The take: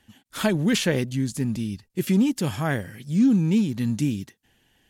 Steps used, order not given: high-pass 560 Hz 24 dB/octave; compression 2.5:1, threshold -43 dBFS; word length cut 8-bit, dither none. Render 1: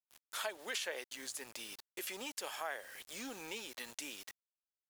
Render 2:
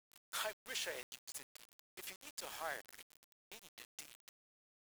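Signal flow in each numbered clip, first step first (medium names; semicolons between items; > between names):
high-pass > word length cut > compression; compression > high-pass > word length cut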